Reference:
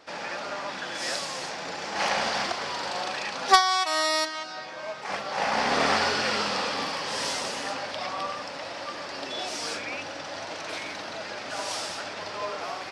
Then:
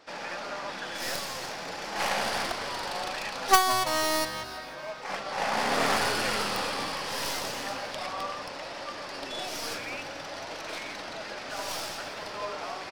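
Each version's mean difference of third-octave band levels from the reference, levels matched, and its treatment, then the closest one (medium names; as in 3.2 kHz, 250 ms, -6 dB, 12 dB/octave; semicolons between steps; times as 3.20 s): 3.0 dB: tracing distortion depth 0.31 ms; on a send: frequency-shifting echo 166 ms, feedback 53%, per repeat -120 Hz, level -14.5 dB; on the sum: trim -2.5 dB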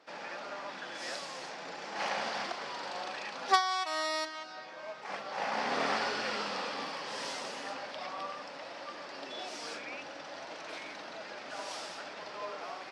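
2.0 dB: high-pass 170 Hz 12 dB/octave; treble shelf 6.4 kHz -8.5 dB; trim -7.5 dB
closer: second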